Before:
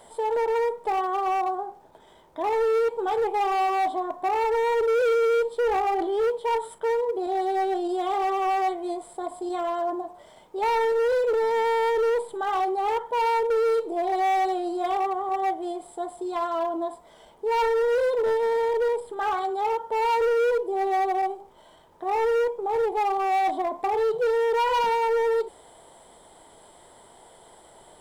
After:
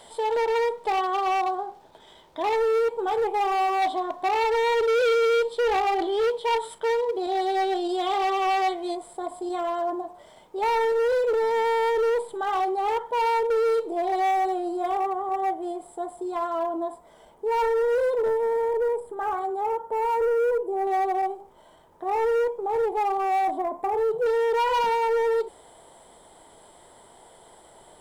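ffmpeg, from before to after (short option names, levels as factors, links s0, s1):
-af "asetnsamples=n=441:p=0,asendcmd='2.56 equalizer g 1;3.82 equalizer g 9;8.95 equalizer g 0.5;14.31 equalizer g -6;18.28 equalizer g -14.5;20.87 equalizer g -4.5;23.45 equalizer g -11.5;24.26 equalizer g -0.5',equalizer=f=3800:t=o:w=1.6:g=9"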